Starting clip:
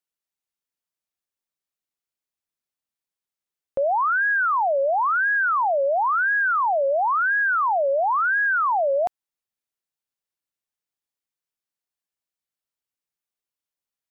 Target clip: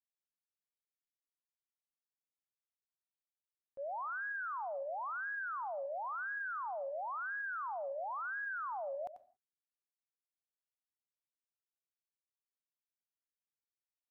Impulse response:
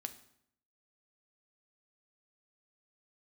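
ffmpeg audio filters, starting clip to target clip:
-filter_complex "[0:a]agate=range=-33dB:threshold=-7dB:ratio=3:detection=peak,asplit=2[a][b];[1:a]atrim=start_sample=2205,afade=t=out:st=0.25:d=0.01,atrim=end_sample=11466,adelay=91[c];[b][c]afir=irnorm=-1:irlink=0,volume=-9dB[d];[a][d]amix=inputs=2:normalize=0,volume=4dB"

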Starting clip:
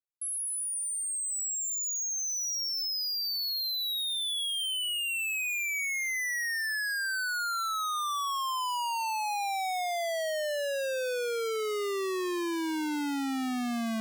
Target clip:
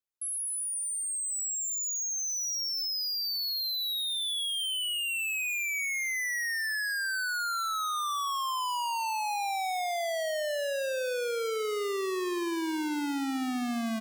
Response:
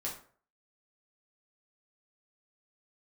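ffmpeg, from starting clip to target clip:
-filter_complex "[0:a]asplit=2[a][b];[b]adelay=195,lowpass=f=2.2k:p=1,volume=-15.5dB,asplit=2[c][d];[d]adelay=195,lowpass=f=2.2k:p=1,volume=0.4,asplit=2[e][f];[f]adelay=195,lowpass=f=2.2k:p=1,volume=0.4,asplit=2[g][h];[h]adelay=195,lowpass=f=2.2k:p=1,volume=0.4[i];[c][e][g][i]amix=inputs=4:normalize=0[j];[a][j]amix=inputs=2:normalize=0"

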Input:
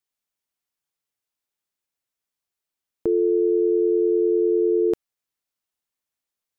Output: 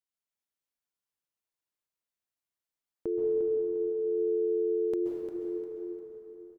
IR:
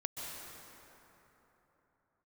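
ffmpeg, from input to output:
-filter_complex "[0:a]aecho=1:1:351|702|1053|1404:0.355|0.124|0.0435|0.0152[a];[1:a]atrim=start_sample=2205[b];[a][b]afir=irnorm=-1:irlink=0,volume=-8dB"

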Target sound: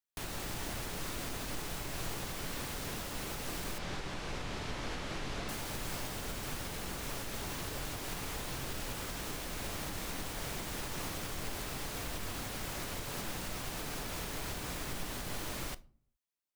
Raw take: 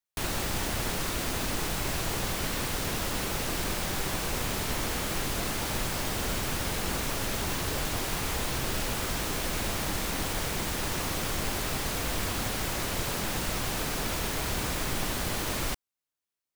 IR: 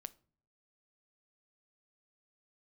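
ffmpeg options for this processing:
-filter_complex "[0:a]asettb=1/sr,asplit=3[a][b][c];[a]atrim=end=3.784[d];[b]atrim=start=3.78:end=5.49,asetpts=PTS-STARTPTS,afade=t=in:d=0.004:c=qsin,afade=t=out:st=1.706:d=0.004:c=qsin,lowpass=5k[e];[c]atrim=start=5.486[f];[d][e]acrossfade=d=0.004:c1=hsin:c2=qsin[g];[g][f]acrossfade=d=0.004:c1=qsin:c2=hsin,alimiter=limit=-24dB:level=0:latency=1:release=356[h];[1:a]atrim=start_sample=2205[i];[h][i]afir=irnorm=-1:irlink=0"

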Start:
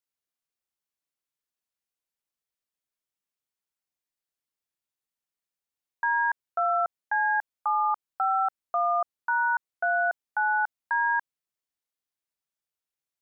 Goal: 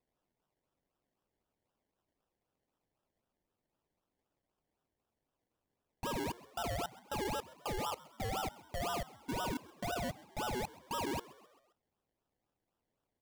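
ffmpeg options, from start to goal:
-filter_complex "[0:a]asettb=1/sr,asplit=3[a][b][c];[a]atrim=end=10.544[d];[b]atrim=start=10.54:end=11.04,asetpts=PTS-STARTPTS,afade=t=in:d=0.004:c=qsin,afade=t=out:st=0.496:d=0.004:c=qsin,lowpass=1.3k[e];[c]atrim=start=11.036[f];[d][e]acrossfade=d=0.004:c1=hsin:c2=qsin[g];[g][f]acrossfade=d=0.004:c1=qsin:c2=hsin,alimiter=level_in=6.5dB:limit=-24dB:level=0:latency=1,volume=-6.5dB,acrusher=samples=28:mix=1:aa=0.000001:lfo=1:lforange=16.8:lforate=3.9,asoftclip=type=tanh:threshold=-36.5dB,asplit=2[h][i];[i]asplit=4[j][k][l][m];[j]adelay=132,afreqshift=68,volume=-20dB[n];[k]adelay=264,afreqshift=136,volume=-25.7dB[o];[l]adelay=396,afreqshift=204,volume=-31.4dB[p];[m]adelay=528,afreqshift=272,volume=-37dB[q];[n][o][p][q]amix=inputs=4:normalize=0[r];[h][r]amix=inputs=2:normalize=0,volume=3.5dB"

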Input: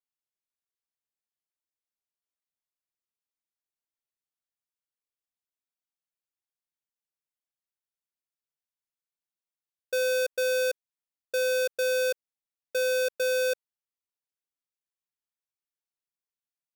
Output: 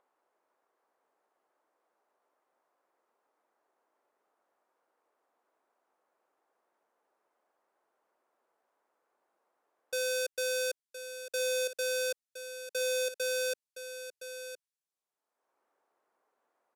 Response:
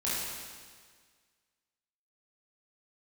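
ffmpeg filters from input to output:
-filter_complex "[0:a]aresample=32000,aresample=44100,asettb=1/sr,asplit=3[a][b][c];[a]atrim=end=9.984[d];[b]atrim=start=9.98:end=11.47,asetpts=PTS-STARTPTS,afade=t=in:d=0.004:c=qsin,afade=t=out:st=1.486:d=0.004:c=qsin,aeval=exprs='0.0668*(cos(1*acos(clip(val(0)/0.0668,-1,1)))-cos(1*PI/2))+0.00211*(cos(7*acos(clip(val(0)/0.0668,-1,1)))-cos(7*PI/2))':c=same[e];[c]atrim=start=11.466[f];[d][e]acrossfade=d=0.004:c1=hsin:c2=qsin[g];[g][f]acrossfade=d=0.004:c1=qsin:c2=hsin,equalizer=f=7.7k:t=o:w=2.4:g=8.5,aecho=1:1:1016:0.282,acrossover=split=340|1200|1900[h][i][j][k];[i]acompressor=mode=upward:threshold=-43dB:ratio=2.5[l];[h][l][j][k]amix=inputs=4:normalize=0,volume=-7.5dB"

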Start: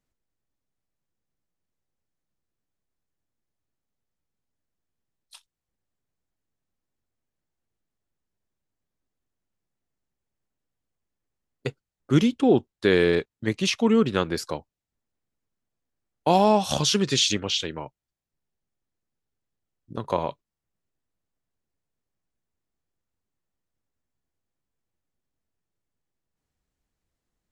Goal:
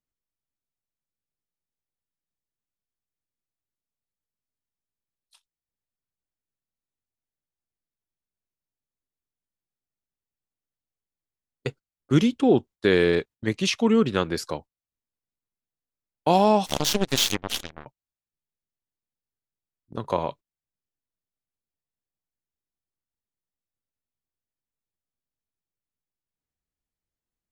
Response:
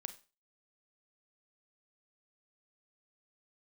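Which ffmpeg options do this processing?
-filter_complex "[0:a]agate=range=-11dB:threshold=-40dB:ratio=16:detection=peak,asplit=3[a][b][c];[a]afade=t=out:st=16.65:d=0.02[d];[b]aeval=exprs='0.355*(cos(1*acos(clip(val(0)/0.355,-1,1)))-cos(1*PI/2))+0.0562*(cos(7*acos(clip(val(0)/0.355,-1,1)))-cos(7*PI/2))+0.0178*(cos(8*acos(clip(val(0)/0.355,-1,1)))-cos(8*PI/2))':c=same,afade=t=in:st=16.65:d=0.02,afade=t=out:st=17.85:d=0.02[e];[c]afade=t=in:st=17.85:d=0.02[f];[d][e][f]amix=inputs=3:normalize=0"

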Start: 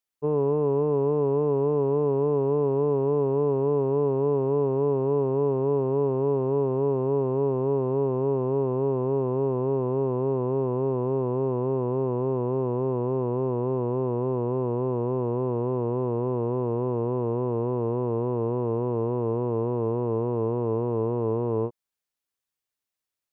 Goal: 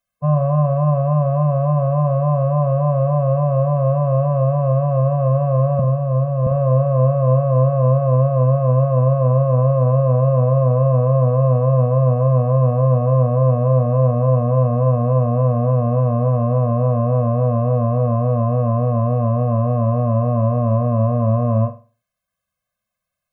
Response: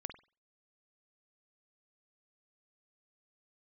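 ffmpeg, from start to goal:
-filter_complex "[0:a]asettb=1/sr,asplit=3[a][b][c];[a]atrim=end=5.794[d];[b]atrim=start=5.79:end=6.47,asetpts=PTS-STARTPTS,afade=t=in:d=0.004:c=qsin,afade=t=out:st=0.676:d=0.004:c=qsin,acrossover=split=150[e][f];[f]acompressor=threshold=-27dB:ratio=4[g];[e][g]amix=inputs=2:normalize=0[h];[c]atrim=start=6.466[i];[d][h]acrossfade=d=0.004:c1=hsin:c2=qsin[j];[j][i]acrossfade=d=0.004:c1=qsin:c2=hsin,asplit=2[k][l];[1:a]atrim=start_sample=2205,lowpass=2.4k[m];[l][m]afir=irnorm=-1:irlink=0,volume=7.5dB[n];[k][n]amix=inputs=2:normalize=0,afftfilt=real='re*eq(mod(floor(b*sr/1024/250),2),0)':imag='im*eq(mod(floor(b*sr/1024/250),2),0)':win_size=1024:overlap=0.75,volume=7dB"

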